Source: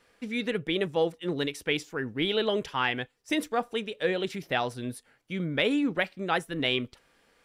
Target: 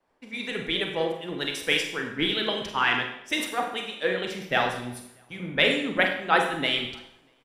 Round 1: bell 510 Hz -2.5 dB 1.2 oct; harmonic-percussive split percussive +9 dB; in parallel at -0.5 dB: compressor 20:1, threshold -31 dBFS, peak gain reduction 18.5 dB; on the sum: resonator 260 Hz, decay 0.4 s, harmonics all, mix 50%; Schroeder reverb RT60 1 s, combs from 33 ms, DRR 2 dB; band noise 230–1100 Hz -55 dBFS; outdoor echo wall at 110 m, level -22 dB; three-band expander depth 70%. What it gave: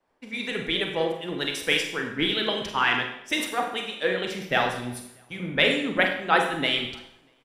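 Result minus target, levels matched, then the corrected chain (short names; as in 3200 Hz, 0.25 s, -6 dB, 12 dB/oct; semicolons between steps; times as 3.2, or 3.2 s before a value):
compressor: peak gain reduction -7.5 dB
bell 510 Hz -2.5 dB 1.2 oct; harmonic-percussive split percussive +9 dB; in parallel at -0.5 dB: compressor 20:1, threshold -39 dBFS, peak gain reduction 26.5 dB; on the sum: resonator 260 Hz, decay 0.4 s, harmonics all, mix 50%; Schroeder reverb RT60 1 s, combs from 33 ms, DRR 2 dB; band noise 230–1100 Hz -55 dBFS; outdoor echo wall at 110 m, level -22 dB; three-band expander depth 70%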